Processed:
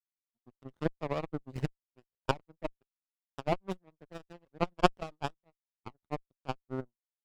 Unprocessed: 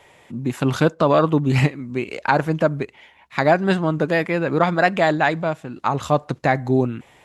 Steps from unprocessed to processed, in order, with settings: per-bin expansion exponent 2; power-law curve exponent 3; running maximum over 17 samples

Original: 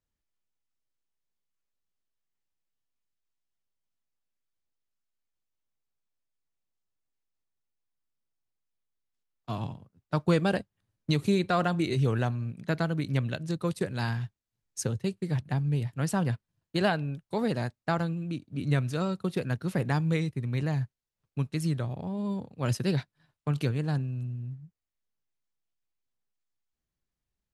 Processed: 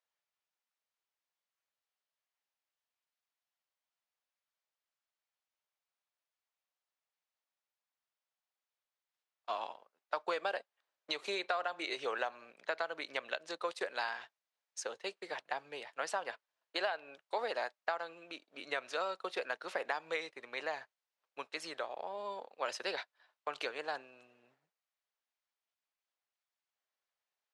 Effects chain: HPF 560 Hz 24 dB/oct; compressor 12:1, threshold -34 dBFS, peak gain reduction 12 dB; air absorption 100 m; gain +3.5 dB

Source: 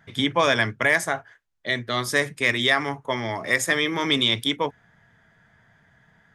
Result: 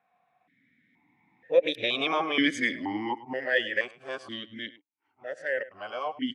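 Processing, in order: whole clip reversed; Doppler pass-by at 2.12, 33 m/s, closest 19 m; in parallel at +1.5 dB: limiter -15.5 dBFS, peak gain reduction 8 dB; on the sum: outdoor echo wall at 18 m, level -17 dB; vowel sequencer 2.1 Hz; gain +6.5 dB

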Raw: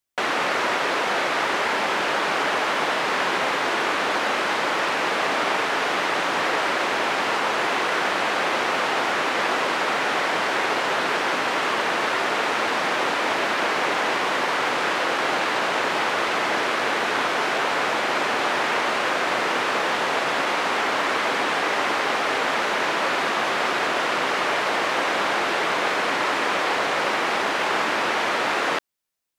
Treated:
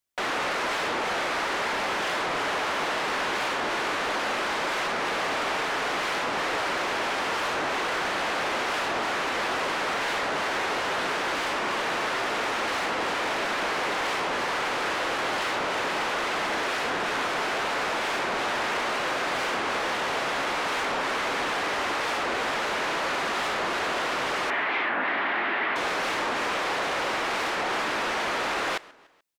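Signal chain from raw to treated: soft clip -21.5 dBFS, distortion -13 dB; 24.5–25.76 speaker cabinet 150–3100 Hz, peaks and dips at 160 Hz -8 dB, 260 Hz +4 dB, 500 Hz -8 dB, 1900 Hz +7 dB; on a send: feedback echo 0.14 s, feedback 47%, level -21.5 dB; on the sum: record warp 45 rpm, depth 250 cents; gain -1.5 dB

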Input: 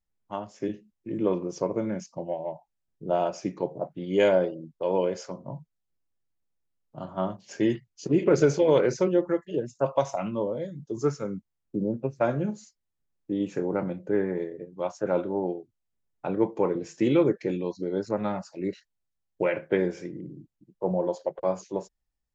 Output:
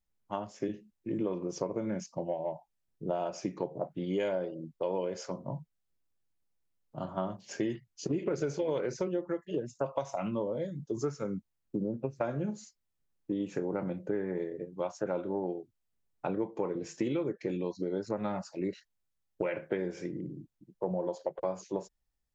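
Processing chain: compressor, threshold -29 dBFS, peak gain reduction 13 dB

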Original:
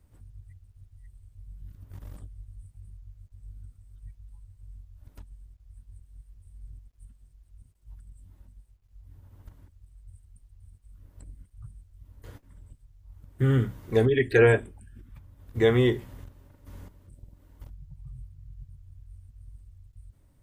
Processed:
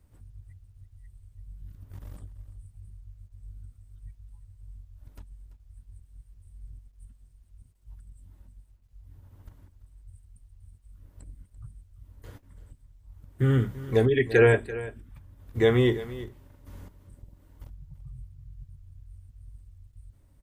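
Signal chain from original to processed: echo 0.338 s -16 dB

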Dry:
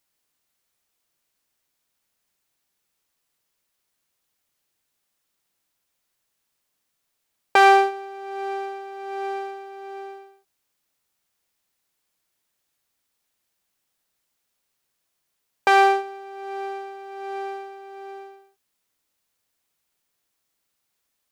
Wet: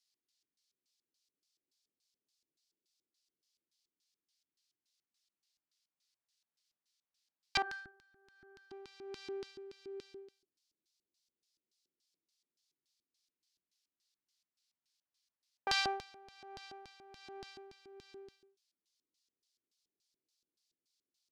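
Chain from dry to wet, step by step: 7.62–8.71 metallic resonator 370 Hz, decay 0.32 s, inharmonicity 0.008; LFO band-pass square 3.5 Hz 350–4700 Hz; phaser stages 2, 0.11 Hz, lowest notch 360–1000 Hz; gain +1 dB

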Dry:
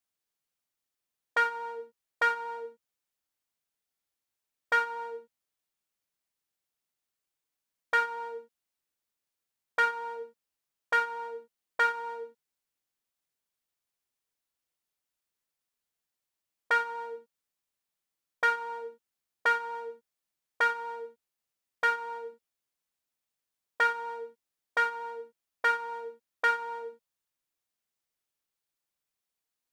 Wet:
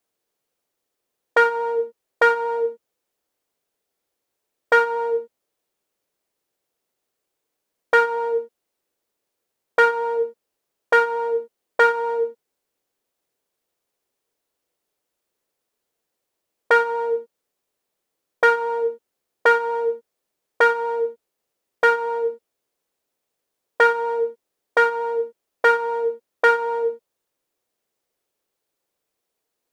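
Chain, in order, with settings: bell 450 Hz +12.5 dB 1.6 oct; gain +6 dB

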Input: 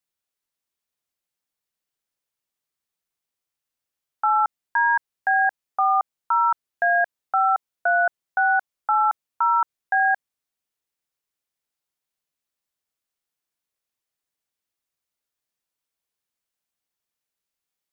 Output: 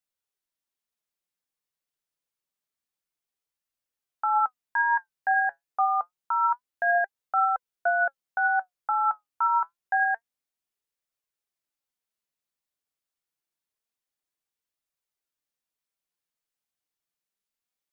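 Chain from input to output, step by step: flange 0.27 Hz, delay 1.4 ms, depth 5.9 ms, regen +70%

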